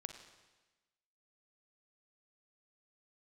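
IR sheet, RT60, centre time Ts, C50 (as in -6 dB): 1.2 s, 23 ms, 7.0 dB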